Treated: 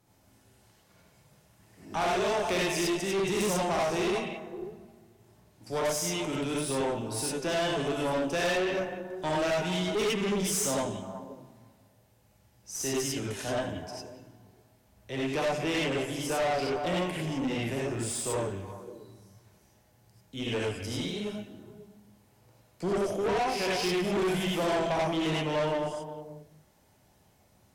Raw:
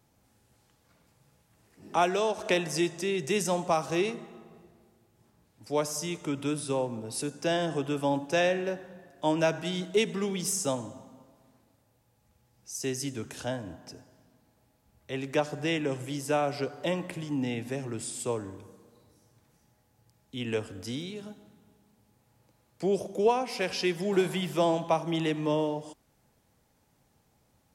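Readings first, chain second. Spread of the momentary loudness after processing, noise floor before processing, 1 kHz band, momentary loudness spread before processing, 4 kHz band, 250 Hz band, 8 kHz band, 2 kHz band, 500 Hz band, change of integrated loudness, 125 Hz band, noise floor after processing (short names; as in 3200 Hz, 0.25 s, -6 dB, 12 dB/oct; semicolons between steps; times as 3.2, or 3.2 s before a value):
13 LU, -69 dBFS, +0.5 dB, 12 LU, +2.5 dB, 0.0 dB, +2.0 dB, +2.0 dB, 0.0 dB, 0.0 dB, +0.5 dB, -64 dBFS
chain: delay with a stepping band-pass 0.18 s, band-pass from 2500 Hz, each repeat -1.4 oct, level -8.5 dB; non-linear reverb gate 0.12 s rising, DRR -5 dB; tube stage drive 25 dB, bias 0.4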